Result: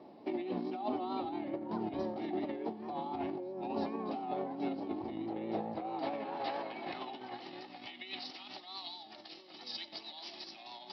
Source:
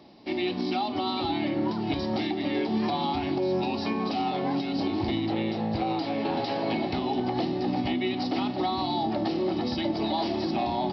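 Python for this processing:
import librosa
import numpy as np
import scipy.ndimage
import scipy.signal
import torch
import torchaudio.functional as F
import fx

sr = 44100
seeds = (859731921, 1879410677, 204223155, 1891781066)

p1 = fx.over_compress(x, sr, threshold_db=-31.0, ratio=-0.5)
p2 = fx.vibrato(p1, sr, rate_hz=4.6, depth_cents=48.0)
p3 = fx.filter_sweep_bandpass(p2, sr, from_hz=540.0, to_hz=5000.0, start_s=5.4, end_s=8.65, q=0.74)
p4 = p3 + fx.echo_single(p3, sr, ms=90, db=-19.0, dry=0)
y = F.gain(torch.from_numpy(p4), -3.0).numpy()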